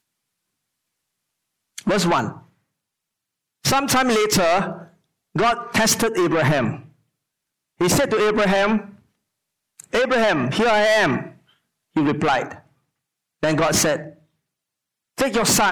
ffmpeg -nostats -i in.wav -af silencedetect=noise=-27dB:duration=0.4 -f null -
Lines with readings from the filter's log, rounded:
silence_start: 0.00
silence_end: 1.78 | silence_duration: 1.78
silence_start: 2.31
silence_end: 3.65 | silence_duration: 1.34
silence_start: 4.82
silence_end: 5.36 | silence_duration: 0.54
silence_start: 6.76
silence_end: 7.81 | silence_duration: 1.05
silence_start: 8.81
silence_end: 9.80 | silence_duration: 0.99
silence_start: 11.26
silence_end: 11.96 | silence_duration: 0.70
silence_start: 12.52
silence_end: 13.43 | silence_duration: 0.91
silence_start: 14.07
silence_end: 15.18 | silence_duration: 1.11